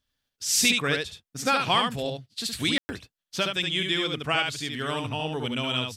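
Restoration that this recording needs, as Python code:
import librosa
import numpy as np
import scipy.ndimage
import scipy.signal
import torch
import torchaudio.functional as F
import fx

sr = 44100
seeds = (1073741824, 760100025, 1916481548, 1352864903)

y = fx.fix_declip(x, sr, threshold_db=-10.5)
y = fx.fix_ambience(y, sr, seeds[0], print_start_s=0.0, print_end_s=0.5, start_s=2.78, end_s=2.89)
y = fx.fix_echo_inverse(y, sr, delay_ms=71, level_db=-4.0)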